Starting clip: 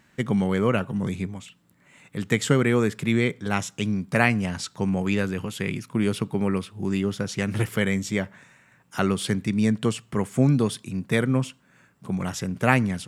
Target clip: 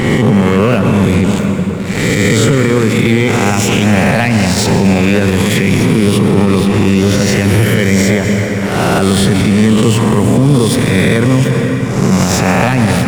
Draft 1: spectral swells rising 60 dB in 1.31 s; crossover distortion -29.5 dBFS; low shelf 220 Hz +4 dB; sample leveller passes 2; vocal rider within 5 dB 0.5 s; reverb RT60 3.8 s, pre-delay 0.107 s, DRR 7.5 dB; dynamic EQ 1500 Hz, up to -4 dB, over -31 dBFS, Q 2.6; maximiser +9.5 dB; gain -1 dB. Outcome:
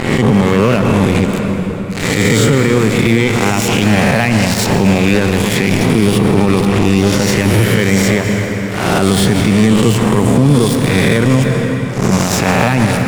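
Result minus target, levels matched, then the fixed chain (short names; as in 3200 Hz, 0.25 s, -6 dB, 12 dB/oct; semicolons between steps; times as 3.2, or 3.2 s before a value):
crossover distortion: distortion +10 dB
spectral swells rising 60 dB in 1.31 s; crossover distortion -40.5 dBFS; low shelf 220 Hz +4 dB; sample leveller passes 2; vocal rider within 5 dB 0.5 s; reverb RT60 3.8 s, pre-delay 0.107 s, DRR 7.5 dB; dynamic EQ 1500 Hz, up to -4 dB, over -31 dBFS, Q 2.6; maximiser +9.5 dB; gain -1 dB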